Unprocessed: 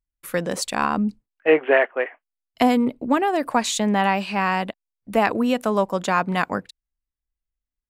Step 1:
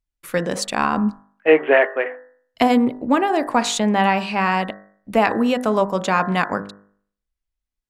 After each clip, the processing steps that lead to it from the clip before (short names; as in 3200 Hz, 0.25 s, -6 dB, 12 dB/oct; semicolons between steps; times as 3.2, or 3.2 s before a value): high shelf 11000 Hz -10 dB; de-hum 50.37 Hz, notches 39; gain +3 dB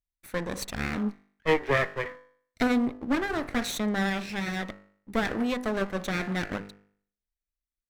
minimum comb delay 0.5 ms; gain -8.5 dB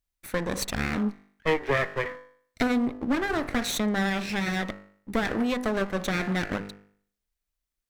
compressor 2:1, threshold -32 dBFS, peak gain reduction 8 dB; gain +6 dB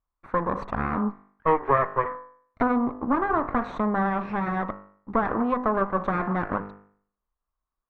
synth low-pass 1100 Hz, resonance Q 4.6